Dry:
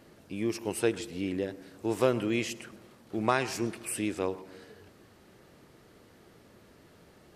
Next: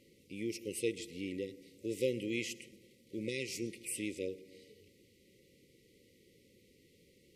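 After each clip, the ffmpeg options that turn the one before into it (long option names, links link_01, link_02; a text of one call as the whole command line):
ffmpeg -i in.wav -af "afftfilt=real='re*(1-between(b*sr/4096,570,1900))':imag='im*(1-between(b*sr/4096,570,1900))':win_size=4096:overlap=0.75,lowshelf=frequency=400:gain=-5.5,volume=-4.5dB" out.wav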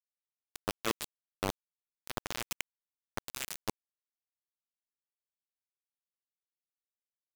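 ffmpeg -i in.wav -filter_complex "[0:a]areverse,acompressor=threshold=-45dB:ratio=10,areverse,acrossover=split=700[link_01][link_02];[link_01]aeval=exprs='val(0)*(1-0.7/2+0.7/2*cos(2*PI*1.3*n/s))':channel_layout=same[link_03];[link_02]aeval=exprs='val(0)*(1-0.7/2-0.7/2*cos(2*PI*1.3*n/s))':channel_layout=same[link_04];[link_03][link_04]amix=inputs=2:normalize=0,acrusher=bits=6:mix=0:aa=0.000001,volume=17dB" out.wav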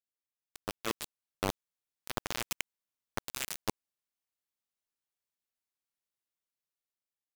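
ffmpeg -i in.wav -af "dynaudnorm=framelen=420:gausssize=5:maxgain=7dB,volume=-5dB" out.wav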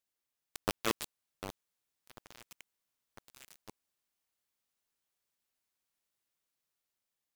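ffmpeg -i in.wav -af "aeval=exprs='0.075*(abs(mod(val(0)/0.075+3,4)-2)-1)':channel_layout=same,volume=5.5dB" out.wav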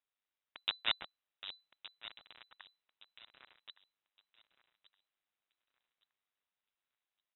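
ffmpeg -i in.wav -af "tremolo=f=100:d=0.667,aecho=1:1:1167|2334|3501:0.168|0.0504|0.0151,lowpass=frequency=3400:width_type=q:width=0.5098,lowpass=frequency=3400:width_type=q:width=0.6013,lowpass=frequency=3400:width_type=q:width=0.9,lowpass=frequency=3400:width_type=q:width=2.563,afreqshift=-4000,volume=2dB" out.wav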